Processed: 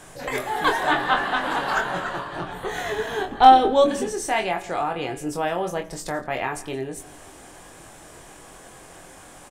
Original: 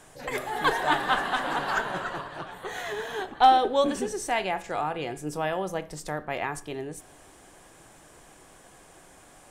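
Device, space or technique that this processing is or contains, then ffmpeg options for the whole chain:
parallel compression: -filter_complex "[0:a]asettb=1/sr,asplit=3[a][b][c];[a]atrim=end=0.914[d];[b]atrim=start=0.91:end=1.44,asetpts=PTS-STARTPTS,afade=t=in:d=0.004:c=qsin,afade=t=out:st=0.526:d=0.004:c=qsin,acrossover=split=4900[e][f];[f]acompressor=threshold=-55dB:ratio=4:attack=1:release=60[g];[e][g]amix=inputs=2:normalize=0[h];[c]atrim=start=1.436[i];[d][h]acrossfade=d=0.004:c1=hsin:c2=qsin[j];[j][i]acrossfade=d=0.004:c1=qsin:c2=hsin,asettb=1/sr,asplit=3[k][l][m];[k]atrim=end=2.334[n];[l]atrim=start=2.33:end=3.84,asetpts=PTS-STARTPTS,afade=t=in:d=0.004:c=qsin,afade=t=out:st=1.506:d=0.004:c=qsin,lowshelf=f=340:g=8[o];[m]atrim=start=3.836[p];[n][o]acrossfade=d=0.004:c1=hsin:c2=qsin[q];[q][p]acrossfade=d=0.004:c1=qsin:c2=hsin,asplit=2[r][s];[s]adelay=23,volume=-5dB[t];[r][t]amix=inputs=2:normalize=0,asplit=2[u][v];[v]acompressor=threshold=-40dB:ratio=6,volume=-2.5dB[w];[u][w]amix=inputs=2:normalize=0,asplit=2[x][y];[y]adelay=169.1,volume=-19dB,highshelf=f=4k:g=-3.8[z];[x][z]amix=inputs=2:normalize=0,volume=1.5dB"

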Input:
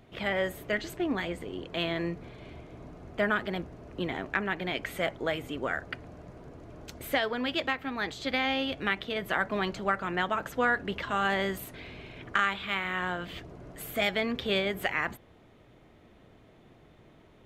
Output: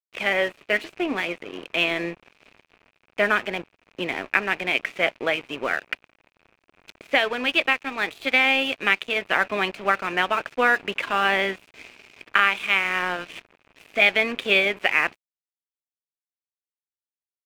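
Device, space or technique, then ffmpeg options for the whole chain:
pocket radio on a weak battery: -af "highpass=280,lowpass=4.1k,aeval=exprs='sgn(val(0))*max(abs(val(0))-0.00562,0)':c=same,equalizer=f=2.5k:t=o:w=0.37:g=11.5,volume=7dB"

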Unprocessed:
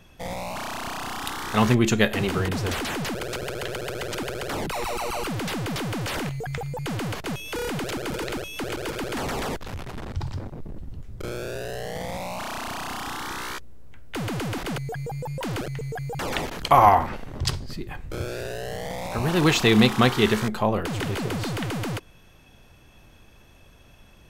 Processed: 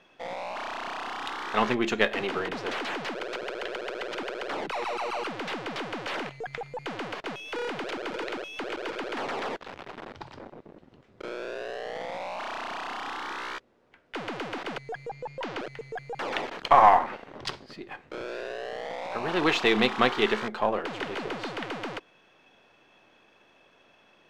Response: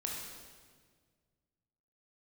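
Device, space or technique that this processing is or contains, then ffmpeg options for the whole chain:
crystal radio: -filter_complex "[0:a]asettb=1/sr,asplit=3[a][b][c];[a]atrim=end=15.094[d];[b]atrim=start=15.09:end=15.6,asetpts=PTS-STARTPTS,afade=t=in:d=0.004:c=qsin,afade=t=out:st=0.506:d=0.004:c=qsin,lowpass=f=7.3k:w=0.5412,lowpass=f=7.3k:w=1.3066[e];[c]atrim=start=15.596[f];[d][e]acrossfade=d=0.004:c1=hsin:c2=qsin[g];[g][f]acrossfade=d=0.004:c1=qsin:c2=hsin,highpass=350,lowpass=3.5k,aeval=exprs='if(lt(val(0),0),0.708*val(0),val(0))':c=same"

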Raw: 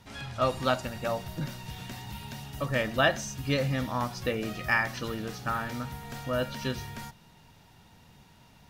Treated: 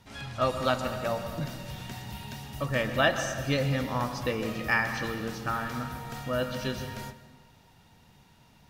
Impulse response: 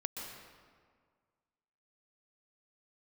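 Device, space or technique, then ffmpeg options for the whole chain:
keyed gated reverb: -filter_complex "[0:a]asplit=3[a][b][c];[1:a]atrim=start_sample=2205[d];[b][d]afir=irnorm=-1:irlink=0[e];[c]apad=whole_len=383667[f];[e][f]sidechaingate=range=-6dB:threshold=-44dB:ratio=16:detection=peak,volume=-0.5dB[g];[a][g]amix=inputs=2:normalize=0,volume=-5dB"

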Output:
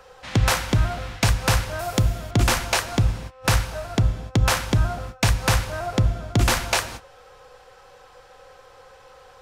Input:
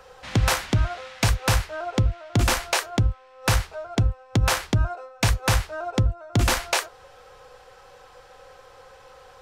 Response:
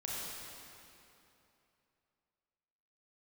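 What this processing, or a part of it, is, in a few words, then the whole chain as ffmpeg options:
keyed gated reverb: -filter_complex "[0:a]asplit=3[a][b][c];[1:a]atrim=start_sample=2205[d];[b][d]afir=irnorm=-1:irlink=0[e];[c]apad=whole_len=415115[f];[e][f]sidechaingate=range=-33dB:threshold=-42dB:ratio=16:detection=peak,volume=-11.5dB[g];[a][g]amix=inputs=2:normalize=0,asettb=1/sr,asplit=3[h][i][j];[h]atrim=end=1.794[k];[i]atrim=start=1.79:end=2.31,asetpts=PTS-STARTPTS,afade=t=in:d=0.004:c=qsin,afade=t=out:st=0.516:d=0.004:c=qsin,aemphasis=mode=production:type=50fm[l];[j]atrim=start=2.306[m];[k][l]acrossfade=d=0.004:c1=hsin:c2=qsin[n];[n][m]acrossfade=d=0.004:c1=qsin:c2=hsin"

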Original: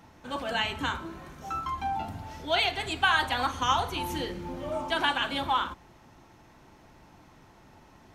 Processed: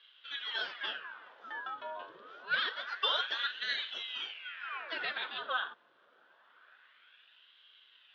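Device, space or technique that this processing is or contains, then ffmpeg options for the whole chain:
voice changer toy: -af "aeval=exprs='val(0)*sin(2*PI*1600*n/s+1600*0.9/0.26*sin(2*PI*0.26*n/s))':c=same,highpass=540,equalizer=f=800:t=q:w=4:g=-5,equalizer=f=1.5k:t=q:w=4:g=10,equalizer=f=2.2k:t=q:w=4:g=-7,equalizer=f=3.4k:t=q:w=4:g=9,lowpass=f=3.6k:w=0.5412,lowpass=f=3.6k:w=1.3066,volume=-6.5dB"

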